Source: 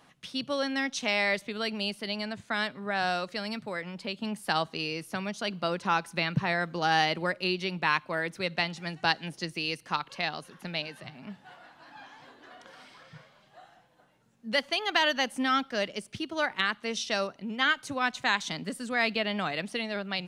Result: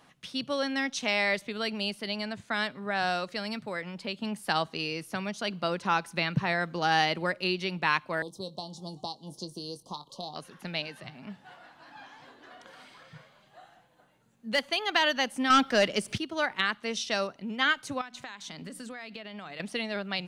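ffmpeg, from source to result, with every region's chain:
ffmpeg -i in.wav -filter_complex "[0:a]asettb=1/sr,asplit=3[link_01][link_02][link_03];[link_01]atrim=end=8.224[link_04];[link_02]atrim=start=8.22:end=10.36,asetpts=PTS-STARTPTS,afade=type=in:duration=0.004:curve=qsin,afade=type=out:start_time=2.136:duration=0.004:curve=qsin,asplit=2[link_05][link_06];[link_06]adelay=21,volume=-11dB[link_07];[link_05][link_07]amix=inputs=2:normalize=0,atrim=end_sample=94374,acrossover=split=2000|4400[link_08][link_09][link_10];[link_08]acompressor=threshold=-36dB:ratio=4[link_11];[link_09]acompressor=threshold=-46dB:ratio=4[link_12];[link_10]acompressor=threshold=-41dB:ratio=4[link_13];[link_11][link_12][link_13]amix=inputs=3:normalize=0,asuperstop=centerf=1900:order=12:qfactor=0.88[link_14];[link_03]atrim=start=10.356[link_15];[link_04][link_14]acrossfade=duration=0.004:curve1=hsin:curve2=qsin[link_16];[link_16][link_15]acrossfade=duration=0.004:curve1=qsin:curve2=hsin,asettb=1/sr,asplit=3[link_17][link_18][link_19];[link_17]atrim=end=12.624[link_20];[link_18]atrim=start=12.62:end=14.83,asetpts=PTS-STARTPTS,afade=type=in:duration=0.004:curve=qsin,afade=type=out:start_time=2.206:duration=0.004:curve=qsin,highshelf=frequency=9900:gain=3,bandreject=frequency=5400:width=8.6,asoftclip=type=hard:threshold=-18dB[link_21];[link_19]atrim=start=14.826[link_22];[link_20][link_21]acrossfade=duration=0.004:curve1=hsin:curve2=qsin[link_23];[link_23][link_22]acrossfade=duration=0.004:curve1=qsin:curve2=hsin,asettb=1/sr,asplit=3[link_24][link_25][link_26];[link_24]atrim=end=15.504[link_27];[link_25]atrim=start=15.5:end=16.18,asetpts=PTS-STARTPTS,afade=type=in:duration=0.004:curve=qsin,afade=type=out:start_time=0.676:duration=0.004:curve=qsin,aeval=exprs='0.178*sin(PI/2*1.58*val(0)/0.178)':channel_layout=same,acompressor=mode=upward:threshold=-31dB:ratio=2.5:attack=3.2:release=140:knee=2.83:detection=peak[link_28];[link_26]atrim=start=16.176[link_29];[link_27][link_28]acrossfade=duration=0.004:curve1=hsin:curve2=qsin[link_30];[link_30][link_29]acrossfade=duration=0.004:curve1=qsin:curve2=hsin,asettb=1/sr,asplit=3[link_31][link_32][link_33];[link_31]atrim=end=18.014[link_34];[link_32]atrim=start=18.01:end=19.6,asetpts=PTS-STARTPTS,afade=type=in:duration=0.004:curve=qsin,afade=type=out:start_time=1.586:duration=0.004:curve=qsin,bandreject=frequency=60:width_type=h:width=6,bandreject=frequency=120:width_type=h:width=6,bandreject=frequency=180:width_type=h:width=6,bandreject=frequency=240:width_type=h:width=6,bandreject=frequency=300:width_type=h:width=6,bandreject=frequency=360:width_type=h:width=6,acompressor=threshold=-37dB:ratio=12:attack=3.2:release=140:knee=1:detection=peak[link_35];[link_33]atrim=start=19.596[link_36];[link_34][link_35]acrossfade=duration=0.004:curve1=hsin:curve2=qsin[link_37];[link_37][link_36]acrossfade=duration=0.004:curve1=qsin:curve2=hsin" out.wav

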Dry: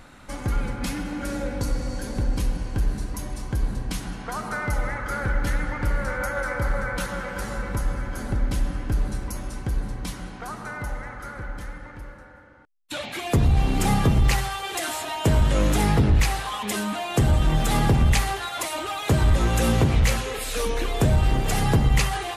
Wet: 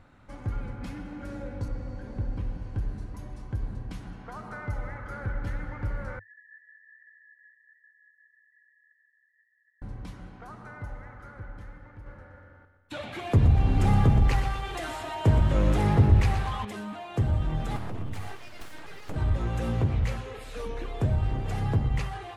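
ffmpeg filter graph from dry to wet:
ffmpeg -i in.wav -filter_complex "[0:a]asettb=1/sr,asplit=3[link_01][link_02][link_03];[link_01]atrim=end=1.684[link_04];[link_02]atrim=start=1.68:end=2.62,asetpts=PTS-STARTPTS,afade=type=in:duration=0.004:curve=qsin,afade=type=out:start_time=0.936:duration=0.004:curve=qsin,acrossover=split=3100[link_05][link_06];[link_06]acompressor=threshold=-47dB:ratio=4:attack=1:release=60[link_07];[link_05][link_07]amix=inputs=2:normalize=0,highshelf=frequency=11000:gain=-7.5[link_08];[link_03]atrim=start=2.616[link_09];[link_04][link_08]acrossfade=duration=0.004:curve1=hsin:curve2=qsin[link_10];[link_10][link_09]acrossfade=duration=0.004:curve1=qsin:curve2=hsin,asettb=1/sr,asplit=3[link_11][link_12][link_13];[link_11]atrim=end=6.194[link_14];[link_12]atrim=start=6.19:end=9.82,asetpts=PTS-STARTPTS,afade=type=in:duration=0.004:curve=qsin,afade=type=out:start_time=3.626:duration=0.004:curve=qsin,asuperpass=centerf=1800:order=20:qfactor=7.2,aecho=1:1:4.1:0.45,atrim=end_sample=160083[link_15];[link_13]atrim=start=9.816[link_16];[link_14][link_15]acrossfade=duration=0.004:curve1=hsin:curve2=qsin[link_17];[link_17][link_16]acrossfade=duration=0.004:curve1=qsin:curve2=hsin,asettb=1/sr,asplit=3[link_18][link_19][link_20];[link_18]atrim=end=12.064[link_21];[link_19]atrim=start=12.06:end=16.65,asetpts=PTS-STARTPTS,afade=type=in:duration=0.004:curve=qsin,afade=type=out:start_time=4.586:duration=0.004:curve=qsin,acontrast=39,aecho=1:1:121|242|363|484|605|726|847:0.316|0.18|0.103|0.0586|0.0334|0.019|0.0108,atrim=end_sample=202419[link_22];[link_20]atrim=start=16.646[link_23];[link_21][link_22]acrossfade=duration=0.004:curve1=hsin:curve2=qsin[link_24];[link_24][link_23]acrossfade=duration=0.004:curve1=qsin:curve2=hsin,asettb=1/sr,asplit=3[link_25][link_26][link_27];[link_25]atrim=end=17.764[link_28];[link_26]atrim=start=17.76:end=19.16,asetpts=PTS-STARTPTS,afade=type=in:duration=0.004:curve=qsin,afade=type=out:start_time=1.396:duration=0.004:curve=qsin,acompressor=threshold=-20dB:ratio=6:attack=3.2:release=140:knee=1:detection=peak,highshelf=frequency=9900:gain=9.5,aeval=exprs='abs(val(0))':channel_layout=same[link_29];[link_27]atrim=start=19.156[link_30];[link_28][link_29]acrossfade=duration=0.004:curve1=hsin:curve2=qsin[link_31];[link_31][link_30]acrossfade=duration=0.004:curve1=qsin:curve2=hsin,lowpass=frequency=1800:poles=1,equalizer=frequency=100:width_type=o:width=0.5:gain=8.5,volume=-9dB" out.wav

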